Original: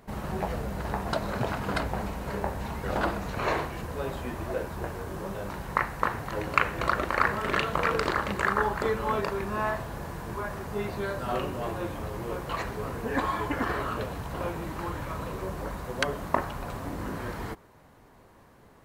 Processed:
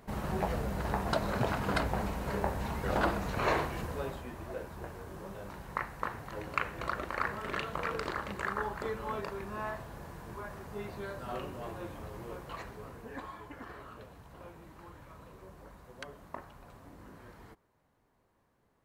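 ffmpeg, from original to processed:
ffmpeg -i in.wav -af "volume=-1.5dB,afade=type=out:start_time=3.82:duration=0.42:silence=0.421697,afade=type=out:start_time=12.2:duration=1.2:silence=0.375837" out.wav

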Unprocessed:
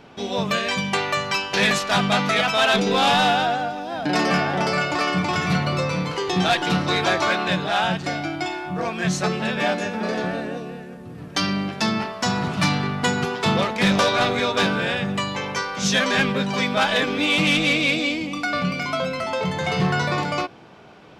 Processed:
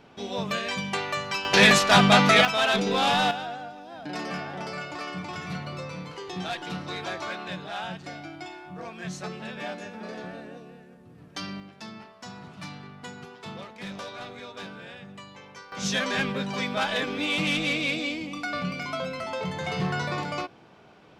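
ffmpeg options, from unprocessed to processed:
ffmpeg -i in.wav -af "asetnsamples=nb_out_samples=441:pad=0,asendcmd='1.45 volume volume 3dB;2.45 volume volume -5dB;3.31 volume volume -13dB;11.6 volume volume -19.5dB;15.72 volume volume -7dB',volume=-6.5dB" out.wav

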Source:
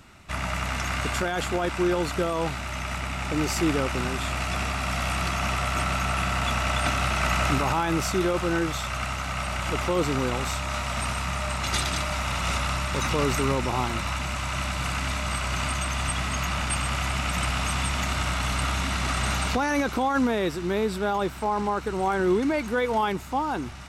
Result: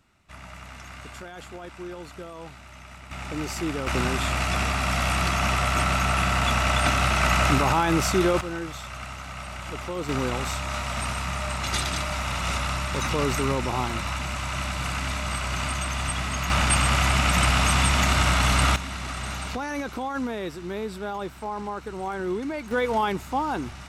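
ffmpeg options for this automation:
ffmpeg -i in.wav -af "asetnsamples=nb_out_samples=441:pad=0,asendcmd='3.11 volume volume -5dB;3.87 volume volume 3dB;8.41 volume volume -7dB;10.09 volume volume -0.5dB;16.5 volume volume 6dB;18.76 volume volume -6dB;22.71 volume volume 0.5dB',volume=-13.5dB" out.wav

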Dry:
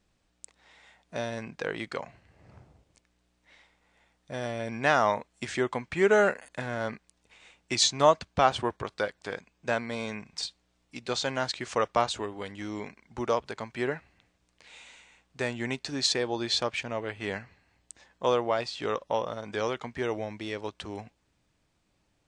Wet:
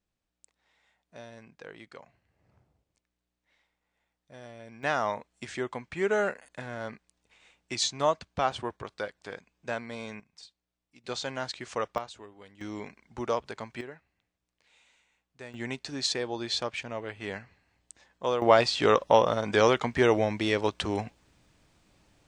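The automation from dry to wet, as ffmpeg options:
ffmpeg -i in.wav -af "asetnsamples=nb_out_samples=441:pad=0,asendcmd='4.83 volume volume -5dB;10.2 volume volume -16dB;11.04 volume volume -4.5dB;11.98 volume volume -13.5dB;12.61 volume volume -2dB;13.81 volume volume -13.5dB;15.54 volume volume -3dB;18.42 volume volume 8.5dB',volume=-13dB" out.wav

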